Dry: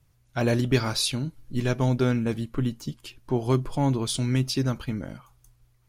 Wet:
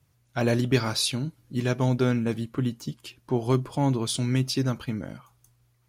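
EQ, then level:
high-pass filter 82 Hz
0.0 dB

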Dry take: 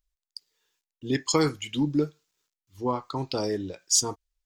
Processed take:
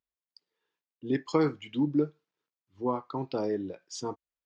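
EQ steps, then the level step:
high-pass filter 160 Hz 12 dB per octave
head-to-tape spacing loss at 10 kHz 33 dB
0.0 dB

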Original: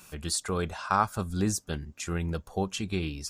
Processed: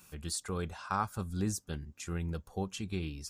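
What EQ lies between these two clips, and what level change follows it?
parametric band 94 Hz +4 dB 2.9 octaves
high-shelf EQ 11,000 Hz +5 dB
notch filter 640 Hz, Q 12
−8.0 dB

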